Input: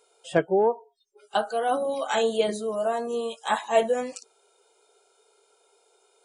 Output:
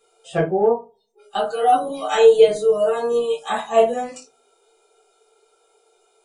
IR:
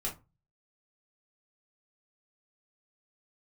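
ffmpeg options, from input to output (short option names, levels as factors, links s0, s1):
-filter_complex "[0:a]asettb=1/sr,asplit=3[s0][s1][s2];[s0]atrim=end=1.424[s3];[s1]atrim=start=1.42:end=3.44,asetpts=PTS-STARTPTS,afade=t=in:d=0.004:c=qsin,afade=t=out:st=2.016:d=0.004:c=qsin,aecho=1:1:6.6:0.93,atrim=end_sample=89082[s4];[s2]atrim=start=3.436[s5];[s3][s4]acrossfade=d=0.004:c1=hsin:c2=qsin[s6];[s6][s5]acrossfade=d=0.004:c1=qsin:c2=hsin[s7];[1:a]atrim=start_sample=2205[s8];[s7][s8]afir=irnorm=-1:irlink=0"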